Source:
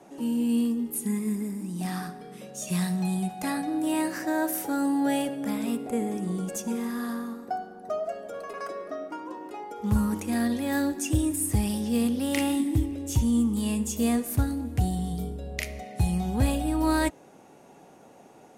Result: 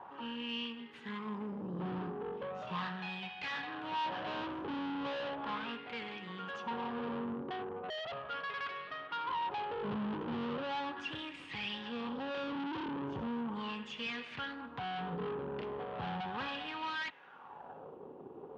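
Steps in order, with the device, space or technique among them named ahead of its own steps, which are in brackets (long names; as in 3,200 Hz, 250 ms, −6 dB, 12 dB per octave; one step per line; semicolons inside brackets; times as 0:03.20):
wah-wah guitar rig (LFO wah 0.37 Hz 360–2,300 Hz, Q 3.3; tube saturation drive 50 dB, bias 0.65; loudspeaker in its box 110–4,000 Hz, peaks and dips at 150 Hz +6 dB, 320 Hz −6 dB, 650 Hz −8 dB, 1,000 Hz +4 dB, 2,100 Hz −6 dB, 3,100 Hz +6 dB)
level +15 dB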